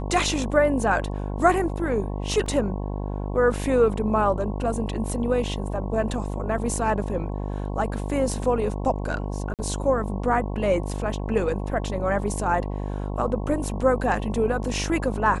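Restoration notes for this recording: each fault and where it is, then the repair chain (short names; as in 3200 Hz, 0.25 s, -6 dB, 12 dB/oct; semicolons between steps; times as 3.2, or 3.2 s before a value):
buzz 50 Hz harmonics 22 -29 dBFS
2.46 gap 3.2 ms
9.54–9.59 gap 48 ms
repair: de-hum 50 Hz, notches 22; interpolate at 2.46, 3.2 ms; interpolate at 9.54, 48 ms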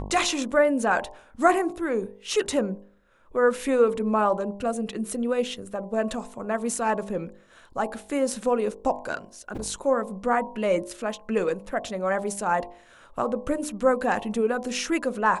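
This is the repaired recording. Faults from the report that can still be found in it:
none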